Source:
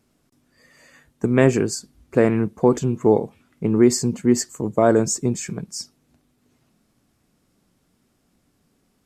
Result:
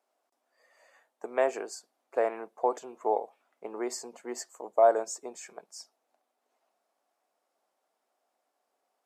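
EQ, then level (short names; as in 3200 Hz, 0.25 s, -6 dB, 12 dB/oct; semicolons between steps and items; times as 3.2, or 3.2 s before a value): ladder high-pass 600 Hz, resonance 50%; tilt shelf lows +5 dB; 0.0 dB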